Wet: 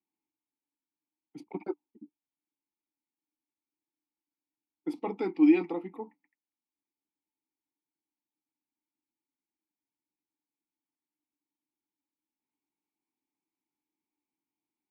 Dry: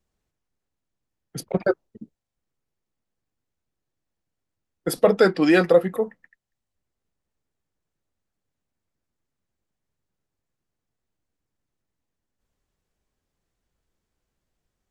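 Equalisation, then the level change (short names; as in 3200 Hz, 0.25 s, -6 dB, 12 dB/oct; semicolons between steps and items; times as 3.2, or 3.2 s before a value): vowel filter u; HPF 210 Hz 6 dB/oct; +2.5 dB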